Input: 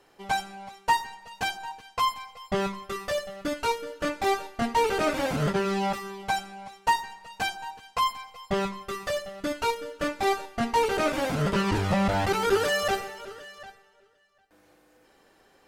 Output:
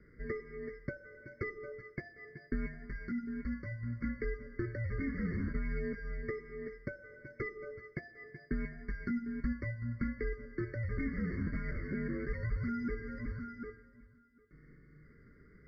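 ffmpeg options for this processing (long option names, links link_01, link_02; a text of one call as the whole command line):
ffmpeg -i in.wav -filter_complex "[0:a]equalizer=frequency=200:width=1.9:gain=-12.5,acompressor=threshold=-35dB:ratio=12,asettb=1/sr,asplit=3[link_01][link_02][link_03];[link_01]atrim=end=2.744[link_04];[link_02]atrim=start=2.74:end=4.04,asetpts=PTS-STARTPTS,afade=type=in:duration=0.004:curve=qsin,afade=type=out:start_time=1.296:duration=0.004:curve=qsin,asoftclip=type=hard:threshold=-37.5dB[link_05];[link_03]atrim=start=4.036[link_06];[link_04][link_05]acrossfade=duration=0.004:curve1=hsin:curve2=qsin[link_07];[link_07][link_06]acrossfade=duration=0.004:curve1=qsin:curve2=hsin,highpass=frequency=160:width_type=q:width=0.5412,highpass=frequency=160:width_type=q:width=1.307,lowpass=frequency=3500:width_type=q:width=0.5176,lowpass=frequency=3500:width_type=q:width=0.7071,lowpass=frequency=3500:width_type=q:width=1.932,afreqshift=-350,asuperstop=centerf=830:order=4:qfactor=0.55,afftfilt=real='re*eq(mod(floor(b*sr/1024/2200),2),0)':imag='im*eq(mod(floor(b*sr/1024/2200),2),0)':win_size=1024:overlap=0.75,volume=6dB" out.wav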